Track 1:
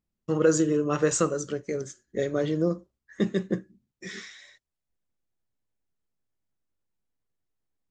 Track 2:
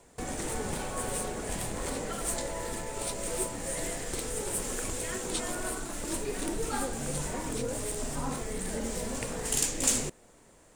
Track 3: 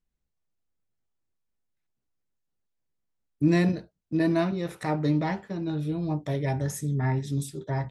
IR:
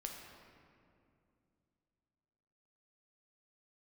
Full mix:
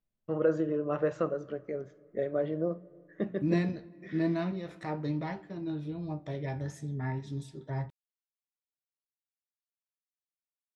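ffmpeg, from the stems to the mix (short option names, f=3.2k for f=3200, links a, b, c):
-filter_complex "[0:a]lowpass=2.2k,equalizer=f=630:t=o:w=0.44:g=10,bandreject=f=60:t=h:w=6,bandreject=f=120:t=h:w=6,bandreject=f=180:t=h:w=6,volume=-8.5dB,asplit=2[a][b];[b]volume=-16dB[c];[2:a]flanger=delay=7.1:depth=6.5:regen=73:speed=0.38:shape=triangular,volume=-4dB,asplit=2[d][e];[e]volume=-15.5dB[f];[3:a]atrim=start_sample=2205[g];[c][f]amix=inputs=2:normalize=0[h];[h][g]afir=irnorm=-1:irlink=0[i];[a][d][i]amix=inputs=3:normalize=0,lowpass=5.2k"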